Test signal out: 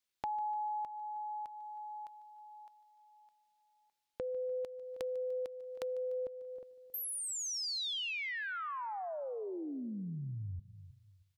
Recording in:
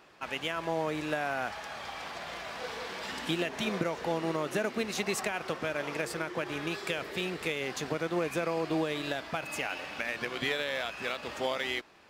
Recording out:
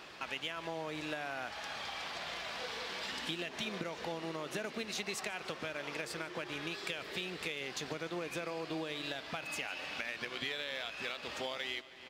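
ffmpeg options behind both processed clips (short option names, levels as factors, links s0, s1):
-filter_complex "[0:a]equalizer=f=3800:w=0.74:g=7,asplit=2[s0][s1];[s1]adelay=316,lowpass=f=2400:p=1,volume=0.0794,asplit=2[s2][s3];[s3]adelay=316,lowpass=f=2400:p=1,volume=0.3[s4];[s2][s4]amix=inputs=2:normalize=0[s5];[s0][s5]amix=inputs=2:normalize=0,acompressor=threshold=0.00398:ratio=2.5,asplit=2[s6][s7];[s7]aecho=0:1:148|296|444|592|740:0.106|0.0604|0.0344|0.0196|0.0112[s8];[s6][s8]amix=inputs=2:normalize=0,volume=1.68"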